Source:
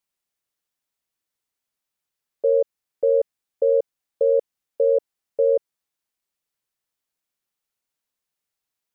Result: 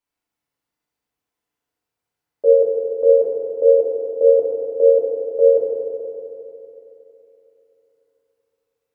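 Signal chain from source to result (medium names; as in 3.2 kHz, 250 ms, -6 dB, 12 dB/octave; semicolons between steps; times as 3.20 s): FDN reverb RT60 3.3 s, high-frequency decay 0.5×, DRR -7.5 dB; tape noise reduction on one side only decoder only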